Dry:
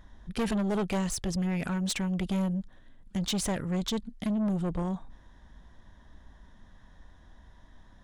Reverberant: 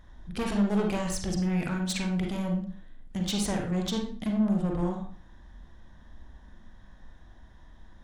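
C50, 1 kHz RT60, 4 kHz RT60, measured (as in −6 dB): 4.5 dB, 0.50 s, 0.40 s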